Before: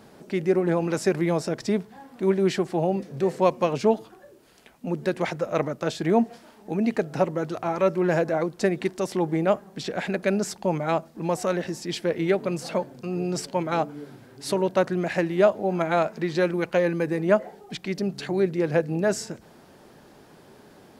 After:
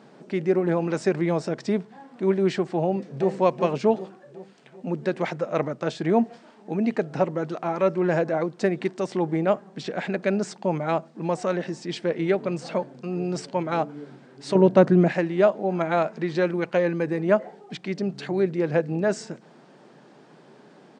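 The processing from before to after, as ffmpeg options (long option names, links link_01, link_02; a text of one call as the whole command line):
ffmpeg -i in.wav -filter_complex "[0:a]asplit=2[link_01][link_02];[link_02]afade=type=in:start_time=2.82:duration=0.01,afade=type=out:start_time=3.33:duration=0.01,aecho=0:1:380|760|1140|1520|1900|2280:0.334965|0.184231|0.101327|0.0557299|0.0306514|0.0168583[link_03];[link_01][link_03]amix=inputs=2:normalize=0,asettb=1/sr,asplit=3[link_04][link_05][link_06];[link_04]atrim=end=14.554[link_07];[link_05]atrim=start=14.55:end=15.12,asetpts=PTS-STARTPTS,afade=type=in:duration=0.004:curve=qsin,afade=type=out:start_time=0.566:duration=0.004:curve=qsin,lowshelf=frequency=490:gain=12[link_08];[link_06]atrim=start=15.116[link_09];[link_07][link_08]acrossfade=duration=0.004:curve1=hsin:curve2=qsin[link_10];[link_10][link_09]acrossfade=duration=0.004:curve1=qsin:curve2=hsin,highshelf=frequency=6400:gain=-11,afftfilt=real='re*between(b*sr/4096,120,9400)':imag='im*between(b*sr/4096,120,9400)':win_size=4096:overlap=0.75" out.wav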